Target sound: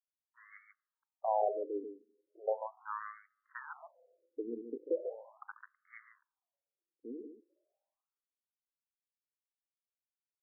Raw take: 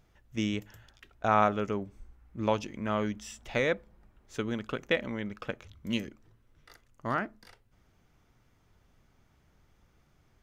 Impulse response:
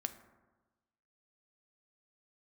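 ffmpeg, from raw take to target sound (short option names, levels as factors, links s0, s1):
-filter_complex "[0:a]adynamicsmooth=sensitivity=6:basefreq=510,asplit=2[s0][s1];[s1]aecho=0:1:87|141:0.141|0.447[s2];[s0][s2]amix=inputs=2:normalize=0,aeval=exprs='sgn(val(0))*max(abs(val(0))-0.00376,0)':c=same,asplit=2[s3][s4];[1:a]atrim=start_sample=2205,lowpass=1700[s5];[s4][s5]afir=irnorm=-1:irlink=0,volume=0.237[s6];[s3][s6]amix=inputs=2:normalize=0,afftfilt=real='re*between(b*sr/1024,340*pow(1600/340,0.5+0.5*sin(2*PI*0.38*pts/sr))/1.41,340*pow(1600/340,0.5+0.5*sin(2*PI*0.38*pts/sr))*1.41)':imag='im*between(b*sr/1024,340*pow(1600/340,0.5+0.5*sin(2*PI*0.38*pts/sr))/1.41,340*pow(1600/340,0.5+0.5*sin(2*PI*0.38*pts/sr))*1.41)':win_size=1024:overlap=0.75,volume=0.596"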